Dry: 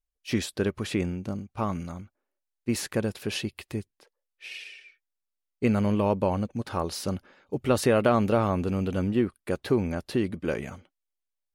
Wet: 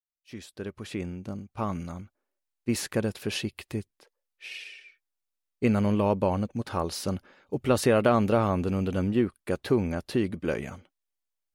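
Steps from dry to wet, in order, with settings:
fade in at the beginning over 1.98 s

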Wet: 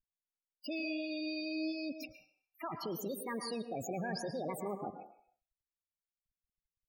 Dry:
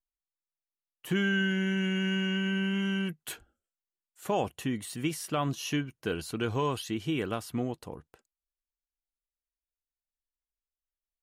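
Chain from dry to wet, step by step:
output level in coarse steps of 23 dB
change of speed 1.63×
spectral peaks only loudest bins 16
on a send: convolution reverb RT60 0.60 s, pre-delay 105 ms, DRR 6 dB
on the sum: level +8.5 dB

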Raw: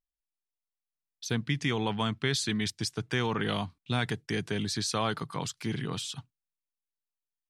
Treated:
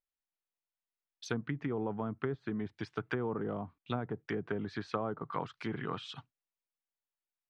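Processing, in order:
bass and treble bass −9 dB, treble −11 dB
treble cut that deepens with the level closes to 540 Hz, closed at −29.5 dBFS
dynamic equaliser 1,300 Hz, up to +6 dB, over −57 dBFS, Q 3

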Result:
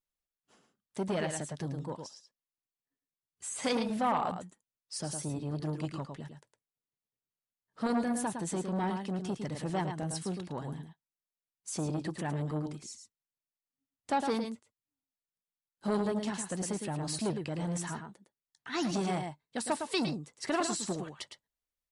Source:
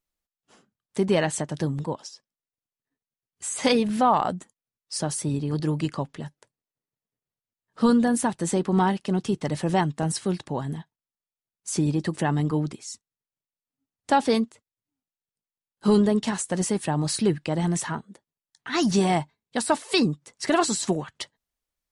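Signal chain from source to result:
single-tap delay 109 ms −7.5 dB
saturating transformer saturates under 690 Hz
level −8.5 dB

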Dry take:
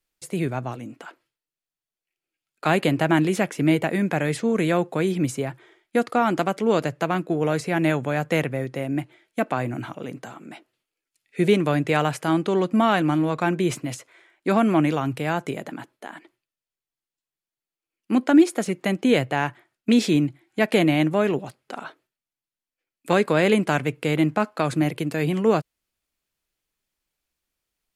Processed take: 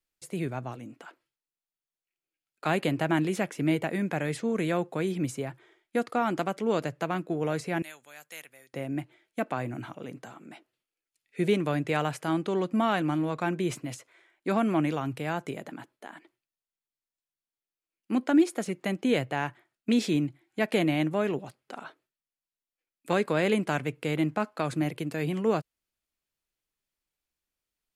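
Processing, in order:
0:07.82–0:08.74: first difference
level −6.5 dB

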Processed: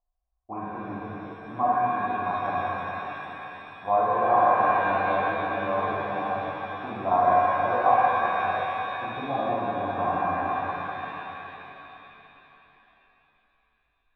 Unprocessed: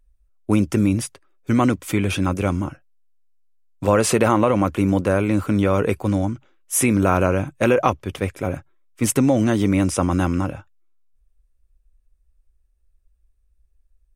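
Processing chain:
formant resonators in series a
reverb with rising layers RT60 3.7 s, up +7 semitones, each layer −8 dB, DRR −9.5 dB

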